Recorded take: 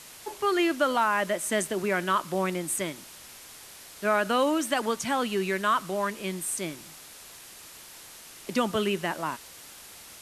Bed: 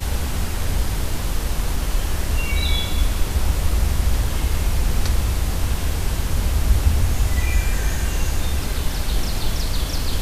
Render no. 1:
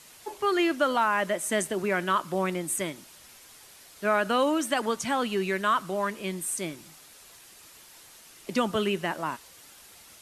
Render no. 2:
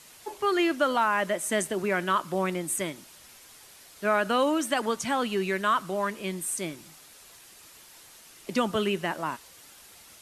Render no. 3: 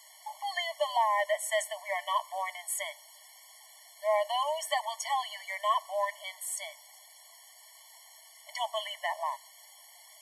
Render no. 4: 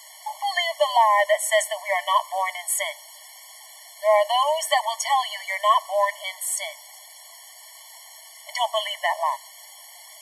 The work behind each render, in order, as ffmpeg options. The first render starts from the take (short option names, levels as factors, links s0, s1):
-af "afftdn=nr=6:nf=-48"
-af anull
-af "afftfilt=real='re*eq(mod(floor(b*sr/1024/580),2),1)':imag='im*eq(mod(floor(b*sr/1024/580),2),1)':win_size=1024:overlap=0.75"
-af "volume=2.99"